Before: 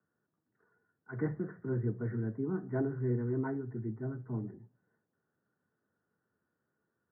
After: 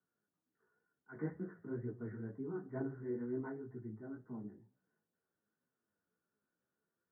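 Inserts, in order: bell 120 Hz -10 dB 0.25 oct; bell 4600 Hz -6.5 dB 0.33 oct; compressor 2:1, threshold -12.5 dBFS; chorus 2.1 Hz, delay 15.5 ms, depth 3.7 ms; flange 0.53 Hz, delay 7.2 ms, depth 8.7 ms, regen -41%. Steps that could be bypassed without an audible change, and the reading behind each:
bell 4600 Hz: input band ends at 1600 Hz; compressor, threshold -12.5 dBFS: input peak -21.0 dBFS

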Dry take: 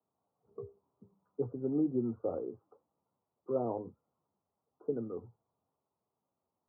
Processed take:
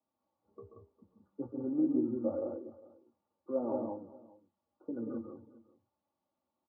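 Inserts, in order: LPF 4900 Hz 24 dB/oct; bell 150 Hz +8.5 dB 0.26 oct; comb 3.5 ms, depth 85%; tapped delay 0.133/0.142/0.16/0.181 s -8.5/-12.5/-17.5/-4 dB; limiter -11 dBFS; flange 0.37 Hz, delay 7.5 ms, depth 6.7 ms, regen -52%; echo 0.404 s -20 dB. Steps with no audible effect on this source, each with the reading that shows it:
LPF 4900 Hz: input band ends at 1100 Hz; limiter -11 dBFS: input peak -14.0 dBFS

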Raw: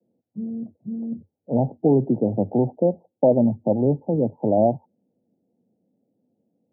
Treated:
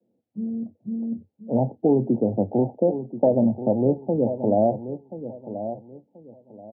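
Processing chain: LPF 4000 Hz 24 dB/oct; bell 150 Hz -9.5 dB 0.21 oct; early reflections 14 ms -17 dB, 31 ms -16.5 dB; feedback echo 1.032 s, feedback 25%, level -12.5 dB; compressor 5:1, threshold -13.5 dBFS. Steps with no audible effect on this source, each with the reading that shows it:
LPF 4000 Hz: input band ends at 910 Hz

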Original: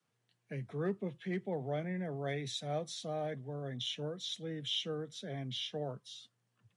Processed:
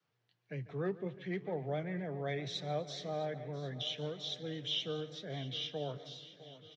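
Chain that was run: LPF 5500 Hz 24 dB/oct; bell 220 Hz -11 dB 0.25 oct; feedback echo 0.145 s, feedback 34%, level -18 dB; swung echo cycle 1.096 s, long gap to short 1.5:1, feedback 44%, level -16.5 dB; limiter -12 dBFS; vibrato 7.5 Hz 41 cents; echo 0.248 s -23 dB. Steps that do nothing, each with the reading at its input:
limiter -12 dBFS: input peak -25.5 dBFS

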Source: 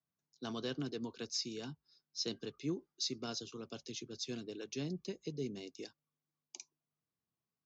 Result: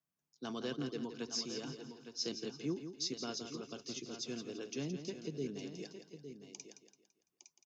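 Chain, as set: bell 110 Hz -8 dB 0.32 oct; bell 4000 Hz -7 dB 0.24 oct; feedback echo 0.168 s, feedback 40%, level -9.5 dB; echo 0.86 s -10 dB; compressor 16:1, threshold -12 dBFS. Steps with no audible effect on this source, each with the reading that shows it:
compressor, threshold -12 dBFS: input peak -25.5 dBFS

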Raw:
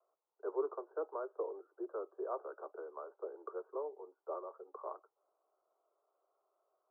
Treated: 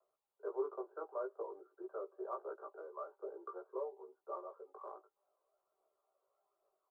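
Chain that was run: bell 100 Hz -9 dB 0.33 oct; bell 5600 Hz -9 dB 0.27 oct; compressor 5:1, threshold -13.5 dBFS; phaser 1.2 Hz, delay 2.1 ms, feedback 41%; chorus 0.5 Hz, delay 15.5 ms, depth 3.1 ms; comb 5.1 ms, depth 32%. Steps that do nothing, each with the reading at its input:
bell 100 Hz: input band starts at 290 Hz; bell 5600 Hz: input band ends at 1500 Hz; compressor, threshold -13.5 dBFS: input peak -24.0 dBFS

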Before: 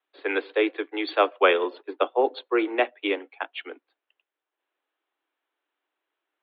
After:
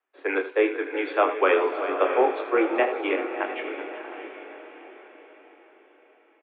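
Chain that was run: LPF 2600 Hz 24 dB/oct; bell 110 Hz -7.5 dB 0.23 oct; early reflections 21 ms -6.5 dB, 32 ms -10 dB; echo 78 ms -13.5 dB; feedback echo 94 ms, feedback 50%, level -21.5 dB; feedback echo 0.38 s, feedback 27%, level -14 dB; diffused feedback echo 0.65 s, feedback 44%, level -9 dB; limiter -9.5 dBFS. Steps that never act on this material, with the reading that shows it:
bell 110 Hz: input band starts at 230 Hz

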